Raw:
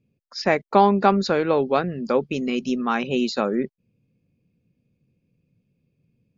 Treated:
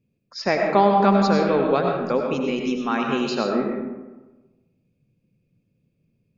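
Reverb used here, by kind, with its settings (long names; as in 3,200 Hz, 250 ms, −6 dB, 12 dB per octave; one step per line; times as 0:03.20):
comb and all-pass reverb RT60 1.2 s, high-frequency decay 0.5×, pre-delay 55 ms, DRR 1 dB
level −2 dB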